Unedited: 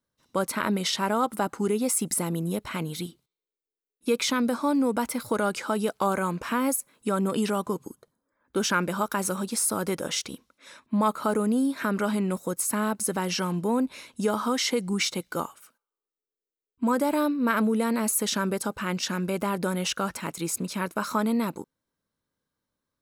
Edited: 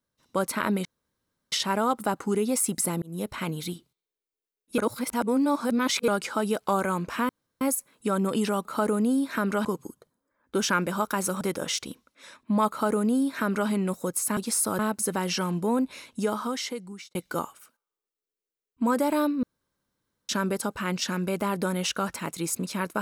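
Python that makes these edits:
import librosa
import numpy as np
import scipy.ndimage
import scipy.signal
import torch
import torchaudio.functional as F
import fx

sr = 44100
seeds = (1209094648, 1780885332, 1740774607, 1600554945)

y = fx.edit(x, sr, fx.insert_room_tone(at_s=0.85, length_s=0.67),
    fx.fade_in_span(start_s=2.35, length_s=0.25),
    fx.reverse_span(start_s=4.11, length_s=1.3),
    fx.insert_room_tone(at_s=6.62, length_s=0.32),
    fx.move(start_s=9.42, length_s=0.42, to_s=12.8),
    fx.duplicate(start_s=11.12, length_s=1.0, to_s=7.66),
    fx.fade_out_span(start_s=14.1, length_s=1.06),
    fx.room_tone_fill(start_s=17.44, length_s=0.86), tone=tone)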